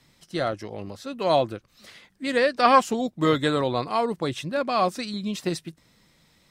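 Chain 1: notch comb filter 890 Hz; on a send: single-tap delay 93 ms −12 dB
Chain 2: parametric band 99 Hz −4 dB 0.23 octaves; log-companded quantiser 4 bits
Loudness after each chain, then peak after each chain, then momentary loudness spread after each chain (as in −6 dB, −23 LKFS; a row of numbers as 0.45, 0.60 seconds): −25.0, −24.0 LKFS; −5.0, −6.0 dBFS; 15, 16 LU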